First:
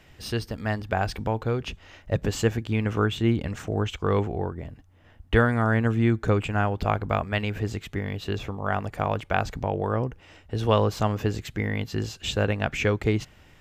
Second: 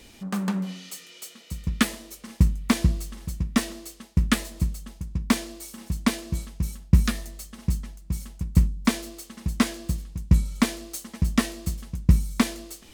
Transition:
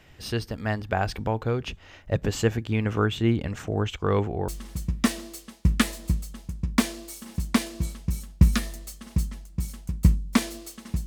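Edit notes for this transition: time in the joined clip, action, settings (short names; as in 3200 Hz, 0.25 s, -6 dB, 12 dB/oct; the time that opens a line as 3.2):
first
4.48 switch to second from 3 s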